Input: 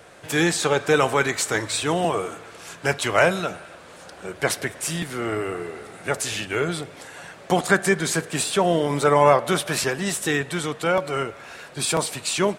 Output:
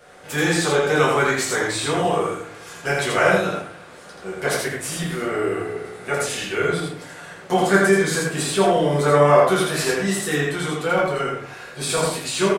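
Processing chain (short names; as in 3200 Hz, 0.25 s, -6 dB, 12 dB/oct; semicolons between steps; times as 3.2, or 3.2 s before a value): low shelf 68 Hz -7.5 dB; echo 82 ms -3 dB; shoebox room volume 32 m³, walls mixed, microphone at 0.94 m; gain -6 dB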